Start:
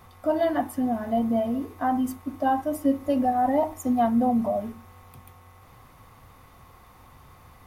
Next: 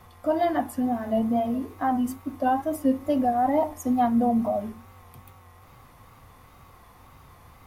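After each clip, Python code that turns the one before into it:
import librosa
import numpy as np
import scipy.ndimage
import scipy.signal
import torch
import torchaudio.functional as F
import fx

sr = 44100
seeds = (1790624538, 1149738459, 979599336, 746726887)

y = fx.wow_flutter(x, sr, seeds[0], rate_hz=2.1, depth_cents=69.0)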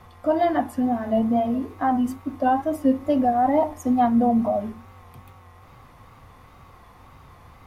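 y = fx.high_shelf(x, sr, hz=7700.0, db=-11.0)
y = y * librosa.db_to_amplitude(3.0)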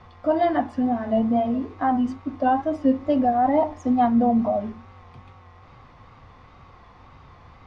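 y = scipy.signal.sosfilt(scipy.signal.butter(4, 5500.0, 'lowpass', fs=sr, output='sos'), x)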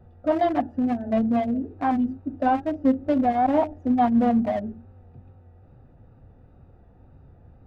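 y = fx.wiener(x, sr, points=41)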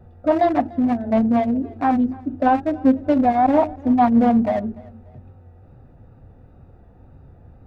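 y = fx.notch(x, sr, hz=3100.0, q=15.0)
y = fx.echo_feedback(y, sr, ms=294, feedback_pct=34, wet_db=-23)
y = fx.doppler_dist(y, sr, depth_ms=0.18)
y = y * librosa.db_to_amplitude(4.5)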